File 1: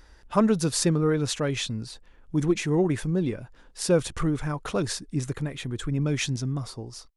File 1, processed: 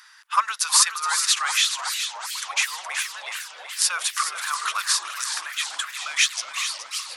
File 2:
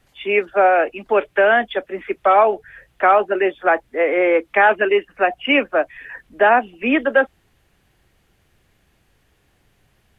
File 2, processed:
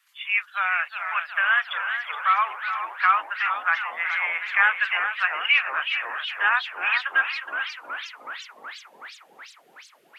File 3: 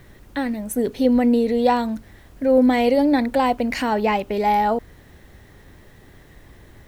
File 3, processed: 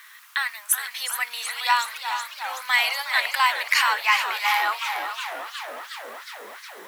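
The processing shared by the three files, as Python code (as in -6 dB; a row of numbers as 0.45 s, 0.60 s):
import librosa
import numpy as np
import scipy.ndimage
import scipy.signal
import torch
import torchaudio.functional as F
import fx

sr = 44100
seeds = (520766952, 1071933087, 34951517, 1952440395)

p1 = scipy.signal.sosfilt(scipy.signal.ellip(4, 1.0, 70, 1100.0, 'highpass', fs=sr, output='sos'), x)
p2 = fx.peak_eq(p1, sr, hz=12000.0, db=4.5, octaves=0.41)
p3 = p2 + fx.echo_single(p2, sr, ms=420, db=-9.5, dry=0)
p4 = fx.echo_warbled(p3, sr, ms=366, feedback_pct=73, rate_hz=2.8, cents=215, wet_db=-11.0)
y = p4 * 10.0 ** (-26 / 20.0) / np.sqrt(np.mean(np.square(p4)))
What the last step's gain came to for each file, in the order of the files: +11.0 dB, -1.0 dB, +8.5 dB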